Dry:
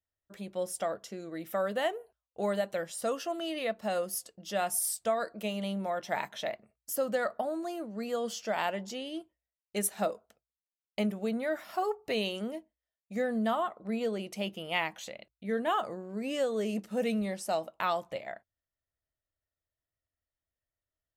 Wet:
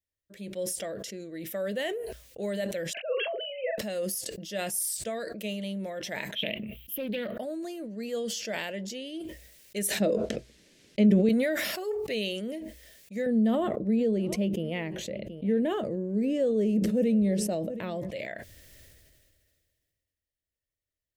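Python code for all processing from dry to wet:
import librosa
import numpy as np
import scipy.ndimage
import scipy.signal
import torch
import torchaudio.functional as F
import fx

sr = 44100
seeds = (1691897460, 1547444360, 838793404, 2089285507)

y = fx.chain(x, sr, fx.sine_speech(),
    fx.highpass(hz=230.0, slope=12),
    fx.doubler(ms=42.0, db=-7), at=(2.93, 3.78))
y = fx.chain(y, sr, fx.curve_eq(hz=(120.0, 200.0, 510.0, 1100.0, 1800.0, 3100.0, 4500.0, 8100.0, 13000.0), db=(0, 7, -6, -5, -9, 14, -15, -22, 5)),
    fx.doppler_dist(depth_ms=0.4), at=(6.35, 7.37))
y = fx.chain(y, sr, fx.lowpass(hz=6200.0, slope=12),
    fx.peak_eq(hz=250.0, db=10.5, octaves=2.3), at=(10.0, 11.29))
y = fx.chain(y, sr, fx.tilt_shelf(db=9.5, hz=800.0),
    fx.echo_single(ms=725, db=-23.5),
    fx.band_squash(depth_pct=40), at=(13.26, 18.11))
y = fx.band_shelf(y, sr, hz=1000.0, db=-13.5, octaves=1.2)
y = fx.sustainer(y, sr, db_per_s=28.0)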